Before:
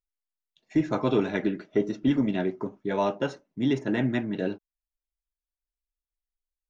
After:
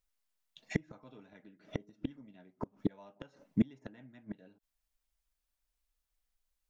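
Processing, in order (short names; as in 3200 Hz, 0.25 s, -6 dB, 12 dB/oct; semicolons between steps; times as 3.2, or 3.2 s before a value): flipped gate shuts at -22 dBFS, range -36 dB; bell 370 Hz -10.5 dB 0.28 oct; gain +7.5 dB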